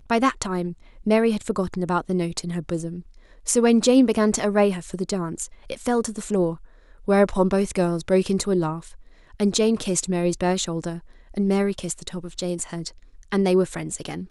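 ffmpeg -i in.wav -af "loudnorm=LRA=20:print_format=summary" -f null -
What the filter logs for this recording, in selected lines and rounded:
Input Integrated:    -23.4 LUFS
Input True Peak:      -5.2 dBTP
Input LRA:             4.0 LU
Input Threshold:     -33.9 LUFS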